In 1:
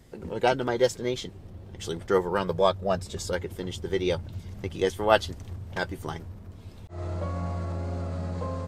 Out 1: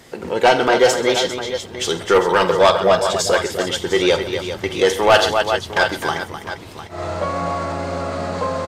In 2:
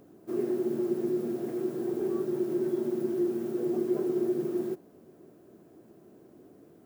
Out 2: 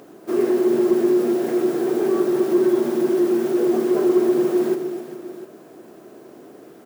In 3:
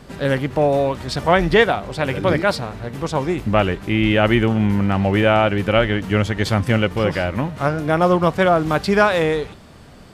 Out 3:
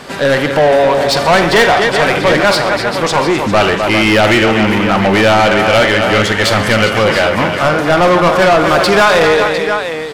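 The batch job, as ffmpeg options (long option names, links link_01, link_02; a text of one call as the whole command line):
ffmpeg -i in.wav -filter_complex "[0:a]aecho=1:1:47|87|133|255|400|704:0.2|0.106|0.119|0.282|0.224|0.188,asplit=2[link_01][link_02];[link_02]highpass=frequency=720:poles=1,volume=24dB,asoftclip=type=tanh:threshold=-0.5dB[link_03];[link_01][link_03]amix=inputs=2:normalize=0,lowpass=frequency=7100:poles=1,volume=-6dB,volume=-1dB" out.wav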